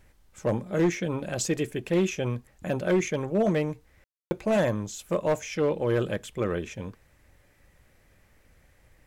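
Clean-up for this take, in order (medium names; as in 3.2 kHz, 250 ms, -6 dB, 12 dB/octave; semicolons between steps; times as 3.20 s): clip repair -17.5 dBFS; room tone fill 4.04–4.31 s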